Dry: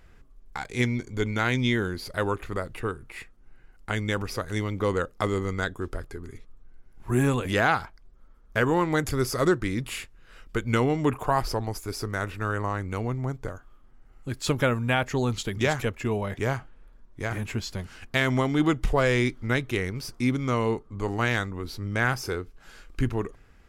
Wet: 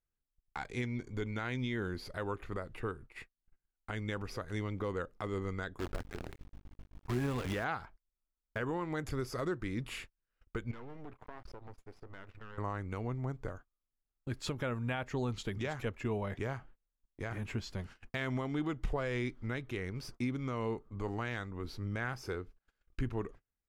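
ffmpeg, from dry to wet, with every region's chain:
-filter_complex "[0:a]asettb=1/sr,asplit=3[a][b][c];[a]atrim=end=5.794[d];[b]atrim=start=5.79:end=7.64,asetpts=PTS-STARTPTS,afade=t=in:d=0.004:c=qsin,afade=t=out:st=1.846:d=0.004:c=qsin,highshelf=f=5.9k:g=-4.5,aeval=exprs='val(0)+0.00891*(sin(2*PI*50*n/s)+sin(2*PI*2*50*n/s)/2+sin(2*PI*3*50*n/s)/3+sin(2*PI*4*50*n/s)/4+sin(2*PI*5*50*n/s)/5)':c=same,acrusher=bits=6:dc=4:mix=0:aa=0.000001[e];[c]atrim=start=7.636[f];[d][e]acrossfade=d=0.004:c1=hsin:c2=qsin[g];[g][f]acrossfade=d=0.004:c1=qsin:c2=hsin,asettb=1/sr,asplit=3[h][i][j];[h]atrim=end=10.714[k];[i]atrim=start=10.71:end=12.58,asetpts=PTS-STARTPTS,afade=t=in:d=0.004:c=qsin,afade=t=out:st=1.866:d=0.004:c=qsin,aeval=exprs='max(val(0),0)':c=same,lowpass=f=3.1k:p=1,acompressor=threshold=-38dB:ratio=4:attack=3.2:release=140:knee=1:detection=peak[l];[j]atrim=start=12.576[m];[k][l]acrossfade=d=0.004:c1=hsin:c2=qsin[n];[n][m]acrossfade=d=0.004:c1=qsin:c2=hsin,highshelf=f=5.7k:g=-10,agate=range=-31dB:threshold=-42dB:ratio=16:detection=peak,alimiter=limit=-19dB:level=0:latency=1:release=268,volume=-6dB"

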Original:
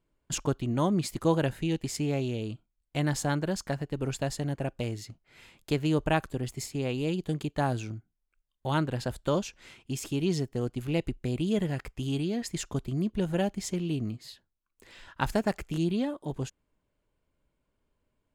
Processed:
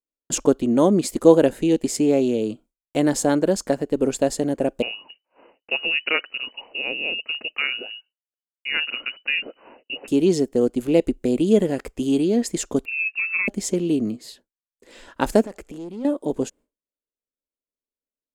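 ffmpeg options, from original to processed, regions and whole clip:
-filter_complex "[0:a]asettb=1/sr,asplit=3[a][b][c];[a]atrim=end=4.824[d];[b]atrim=start=4.82:end=10.08,asetpts=PTS-STARTPTS,afade=t=in:d=0.004:c=qsin,afade=t=out:st=5.256:d=0.004:c=qsin,lowshelf=f=100:g=-8.5,lowpass=f=2.6k:t=q:w=0.5098,lowpass=f=2.6k:t=q:w=0.6013,lowpass=f=2.6k:t=q:w=0.9,lowpass=f=2.6k:t=q:w=2.563,afreqshift=-3000[e];[c]atrim=start=10.076[f];[d][e]acrossfade=d=0.004:c1=hsin:c2=qsin[g];[g][f]acrossfade=d=0.004:c1=qsin:c2=hsin,asettb=1/sr,asplit=3[h][i][j];[h]atrim=end=12.854[k];[i]atrim=start=12.85:end=13.48,asetpts=PTS-STARTPTS,afade=t=in:d=0.004:c=qsin,afade=t=out:st=0.626:d=0.004:c=qsin,equalizer=f=2.2k:w=2.4:g=-13.5,asplit=2[l][m];[m]adelay=18,volume=-13dB[n];[l][n]amix=inputs=2:normalize=0,atrim=end_sample=27783,lowpass=f=2.4k:t=q:w=0.5098,lowpass=f=2.4k:t=q:w=0.6013,lowpass=f=2.4k:t=q:w=0.9,lowpass=f=2.4k:t=q:w=2.563,afreqshift=-2800[o];[j]atrim=start=13.476[p];[k][o]acrossfade=d=0.004:c1=hsin:c2=qsin[q];[q][p]acrossfade=d=0.004:c1=qsin:c2=hsin,asettb=1/sr,asplit=3[r][s][t];[r]atrim=end=15.424[u];[s]atrim=start=15.42:end=16.05,asetpts=PTS-STARTPTS,afade=t=in:d=0.004:c=qsin,afade=t=out:st=0.626:d=0.004:c=qsin,asoftclip=type=hard:threshold=-26dB,highshelf=f=9.2k:g=-4.5,acompressor=threshold=-42dB:ratio=8:attack=3.2:release=140:knee=1:detection=peak[v];[t]atrim=start=16.046[w];[u][v]acrossfade=d=0.004:c1=hsin:c2=qsin[x];[x][w]acrossfade=d=0.004:c1=qsin:c2=hsin,highshelf=f=11k:g=3.5,agate=range=-33dB:threshold=-51dB:ratio=3:detection=peak,equalizer=f=125:t=o:w=1:g=-10,equalizer=f=250:t=o:w=1:g=10,equalizer=f=500:t=o:w=1:g=11,equalizer=f=8k:t=o:w=1:g=7,volume=2.5dB"

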